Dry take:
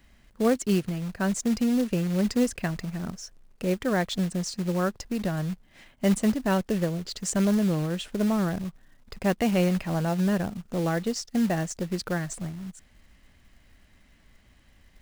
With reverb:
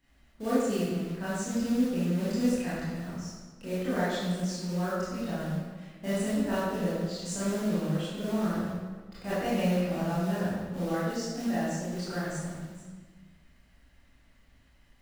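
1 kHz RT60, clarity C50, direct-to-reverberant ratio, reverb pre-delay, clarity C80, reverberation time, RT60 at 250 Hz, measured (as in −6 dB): 1.4 s, −3.0 dB, −11.5 dB, 21 ms, 0.0 dB, 1.4 s, 1.6 s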